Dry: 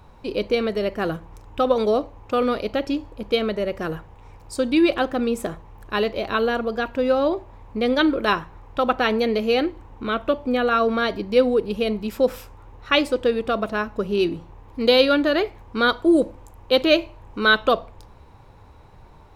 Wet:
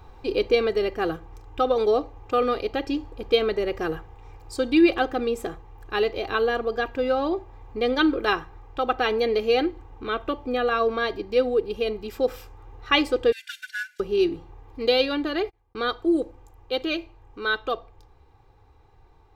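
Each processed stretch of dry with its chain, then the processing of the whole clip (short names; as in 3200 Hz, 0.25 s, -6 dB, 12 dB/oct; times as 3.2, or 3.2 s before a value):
13.32–14 CVSD 64 kbps + brick-wall FIR high-pass 1400 Hz + comb 3.4 ms, depth 74%
15.24–15.88 gate -34 dBFS, range -59 dB + backwards sustainer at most 150 dB/s
whole clip: comb 2.5 ms, depth 62%; vocal rider 2 s; bell 10000 Hz -7.5 dB 0.48 oct; gain -5.5 dB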